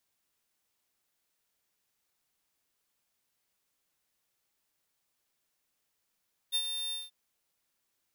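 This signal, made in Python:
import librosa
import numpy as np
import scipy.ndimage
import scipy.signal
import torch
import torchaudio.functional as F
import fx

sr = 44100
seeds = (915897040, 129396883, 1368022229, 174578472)

y = fx.adsr_tone(sr, wave='square', hz=3600.0, attack_ms=33.0, decay_ms=63.0, sustain_db=-7.5, held_s=0.4, release_ms=183.0, level_db=-28.0)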